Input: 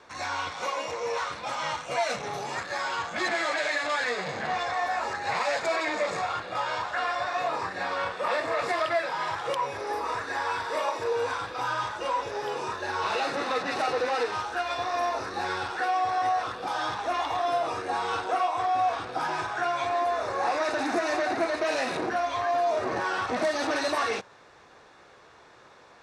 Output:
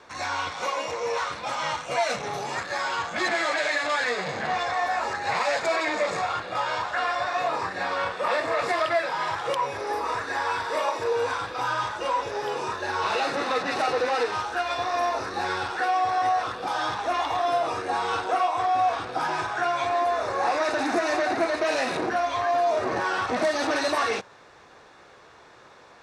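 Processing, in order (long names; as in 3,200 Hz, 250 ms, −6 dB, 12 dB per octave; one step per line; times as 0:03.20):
level +2.5 dB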